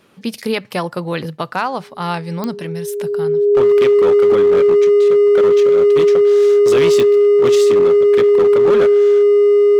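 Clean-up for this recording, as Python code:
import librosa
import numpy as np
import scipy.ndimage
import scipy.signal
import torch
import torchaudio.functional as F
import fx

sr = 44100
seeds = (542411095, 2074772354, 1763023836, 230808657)

y = fx.fix_declip(x, sr, threshold_db=-8.0)
y = fx.fix_declick_ar(y, sr, threshold=10.0)
y = fx.notch(y, sr, hz=410.0, q=30.0)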